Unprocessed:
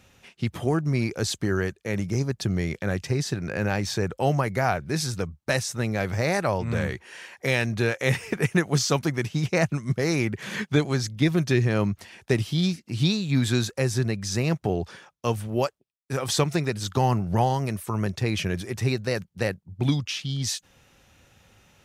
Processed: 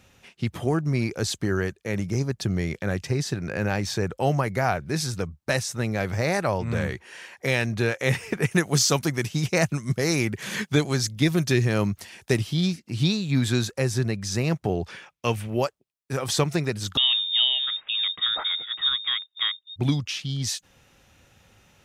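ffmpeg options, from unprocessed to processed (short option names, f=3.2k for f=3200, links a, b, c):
-filter_complex "[0:a]asettb=1/sr,asplit=3[a][b][c];[a]atrim=end=8.514[d];[b]atrim=start=8.51:end=12.38,asetpts=PTS-STARTPTS,afade=t=in:d=0.004:c=qsin,afade=t=out:st=3.866:d=0.004:c=qsin,highshelf=f=4.8k:g=9[e];[c]atrim=start=12.376[f];[d][e]acrossfade=d=0.004:c1=hsin:c2=qsin[g];[g][f]acrossfade=d=0.004:c1=qsin:c2=hsin,asettb=1/sr,asplit=3[h][i][j];[h]atrim=end=14.884[k];[i]atrim=start=14.88:end=15.57,asetpts=PTS-STARTPTS,afade=t=in:d=0.004:c=qsin,afade=t=out:st=0.686:d=0.004:c=qsin,equalizer=f=2.4k:t=o:w=0.85:g=9[l];[j]atrim=start=15.566[m];[k][l]acrossfade=d=0.004:c1=hsin:c2=qsin[n];[n][m]acrossfade=d=0.004:c1=qsin:c2=hsin,asettb=1/sr,asplit=3[o][p][q];[o]atrim=end=16.974[r];[p]atrim=start=16.97:end=19.76,asetpts=PTS-STARTPTS,afade=t=in:d=0.004:c=qsin,afade=t=out:st=2.786:d=0.004:c=qsin,lowpass=f=3.2k:t=q:w=0.5098,lowpass=f=3.2k:t=q:w=0.6013,lowpass=f=3.2k:t=q:w=0.9,lowpass=f=3.2k:t=q:w=2.563,afreqshift=-3800[s];[q]atrim=start=19.756[t];[r][s]acrossfade=d=0.004:c1=hsin:c2=qsin[u];[u][t]acrossfade=d=0.004:c1=qsin:c2=hsin"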